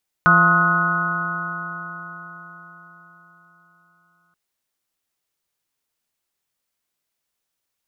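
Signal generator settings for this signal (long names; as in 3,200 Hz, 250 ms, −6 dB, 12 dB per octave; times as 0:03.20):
stiff-string partials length 4.08 s, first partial 169 Hz, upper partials −12/−18.5/−7.5/−11.5/−2/4.5/5 dB, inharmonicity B 0.0028, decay 4.66 s, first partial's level −18 dB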